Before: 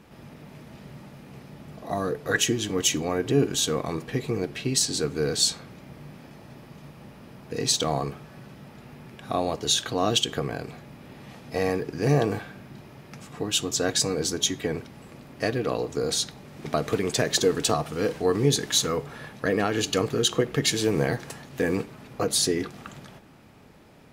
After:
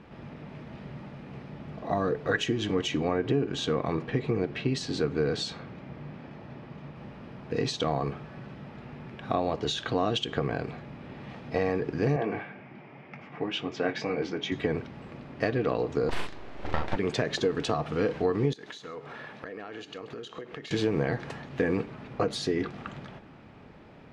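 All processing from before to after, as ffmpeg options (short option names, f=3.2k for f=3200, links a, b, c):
-filter_complex "[0:a]asettb=1/sr,asplit=3[a][b][c];[a]atrim=end=2.814[d];[b]atrim=start=2.81:end=6.96,asetpts=PTS-STARTPTS,afade=t=in:d=0.004:c=qsin,afade=t=out:st=4.146:d=0.004:c=qsin,highpass=53,highshelf=f=5.5k:g=-6[e];[c]atrim=start=6.956[f];[d][e]acrossfade=d=0.004:c1=hsin:c2=qsin[g];[g][f]acrossfade=d=0.004:c1=qsin:c2=hsin,asettb=1/sr,asplit=3[h][i][j];[h]atrim=end=12.164[k];[i]atrim=start=12.16:end=14.52,asetpts=PTS-STARTPTS,afade=t=in:d=0.004:c=qsin,afade=t=out:st=2.356:d=0.004:c=qsin,highpass=150,equalizer=f=780:t=q:w=4:g=4,equalizer=f=2.2k:t=q:w=4:g=9,equalizer=f=4k:t=q:w=4:g=-10,lowpass=f=4.9k:w=0.5412,lowpass=f=4.9k:w=1.3066,flanger=delay=0.9:depth=6.8:regen=-43:speed=2:shape=triangular,asplit=2[l][m];[m]adelay=22,volume=-12.5dB[n];[l][n]amix=inputs=2:normalize=0,atrim=end_sample=104076[o];[j]atrim=start=14.516[p];[k][o]acrossfade=d=0.004:c1=hsin:c2=qsin[q];[q][p]acrossfade=d=0.004:c1=qsin:c2=hsin,asettb=1/sr,asplit=3[r][s][t];[r]atrim=end=16.094[u];[s]atrim=start=16.09:end=16.96,asetpts=PTS-STARTPTS,afade=t=in:d=0.004:c=qsin,afade=t=out:st=0.866:d=0.004:c=qsin,aeval=exprs='abs(val(0))':c=same,asplit=2[v][w];[w]adelay=39,volume=-3dB[x];[v][x]amix=inputs=2:normalize=0,atrim=end_sample=38367[y];[t]atrim=start=16.956[z];[u][y]acrossfade=d=0.004:c1=hsin:c2=qsin[aa];[aa][z]acrossfade=d=0.004:c1=qsin:c2=hsin,asettb=1/sr,asplit=3[ab][ac][ad];[ab]atrim=end=18.534[ae];[ac]atrim=start=18.53:end=20.71,asetpts=PTS-STARTPTS,afade=t=in:d=0.004:c=qsin,afade=t=out:st=2.176:d=0.004:c=qsin,highpass=f=360:p=1,acompressor=threshold=-39dB:ratio=6:attack=3.2:release=140:knee=1:detection=peak,aecho=1:1:132:0.141,atrim=end_sample=96138[af];[ad]atrim=start=20.706[ag];[ae][af]acrossfade=d=0.004:c1=hsin:c2=qsin[ah];[ah][ag]acrossfade=d=0.004:c1=qsin:c2=hsin,acompressor=threshold=-24dB:ratio=6,lowpass=3.1k,volume=2dB"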